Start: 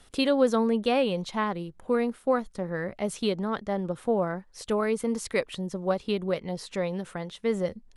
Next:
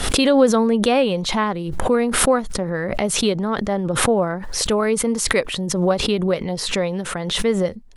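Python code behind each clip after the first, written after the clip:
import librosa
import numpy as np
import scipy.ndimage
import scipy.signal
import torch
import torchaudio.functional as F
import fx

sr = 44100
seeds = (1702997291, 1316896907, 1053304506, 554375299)

y = fx.pre_swell(x, sr, db_per_s=43.0)
y = y * 10.0 ** (7.0 / 20.0)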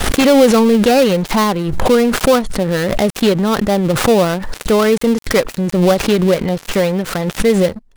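y = fx.dead_time(x, sr, dead_ms=0.15)
y = fx.leveller(y, sr, passes=2)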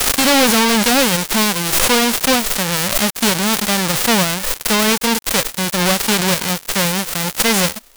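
y = fx.envelope_flatten(x, sr, power=0.1)
y = np.clip(y, -10.0 ** (-8.5 / 20.0), 10.0 ** (-8.5 / 20.0))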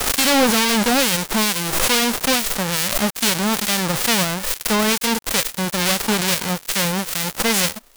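y = fx.harmonic_tremolo(x, sr, hz=2.3, depth_pct=50, crossover_hz=1600.0)
y = y * 10.0 ** (-1.0 / 20.0)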